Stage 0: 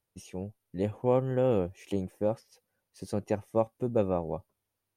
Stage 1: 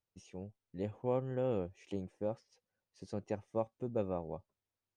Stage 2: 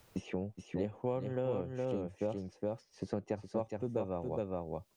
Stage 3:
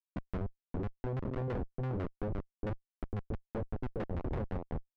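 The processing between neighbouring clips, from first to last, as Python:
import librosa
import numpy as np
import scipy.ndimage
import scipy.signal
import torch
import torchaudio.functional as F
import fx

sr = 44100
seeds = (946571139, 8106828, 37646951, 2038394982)

y1 = scipy.signal.sosfilt(scipy.signal.butter(4, 7400.0, 'lowpass', fs=sr, output='sos'), x)
y1 = y1 * 10.0 ** (-8.5 / 20.0)
y2 = y1 + 10.0 ** (-4.0 / 20.0) * np.pad(y1, (int(415 * sr / 1000.0), 0))[:len(y1)]
y2 = fx.band_squash(y2, sr, depth_pct=100)
y3 = fx.schmitt(y2, sr, flips_db=-35.5)
y3 = fx.filter_lfo_lowpass(y3, sr, shape='saw_down', hz=6.0, low_hz=460.0, high_hz=2100.0, q=0.73)
y3 = y3 * 10.0 ** (4.0 / 20.0)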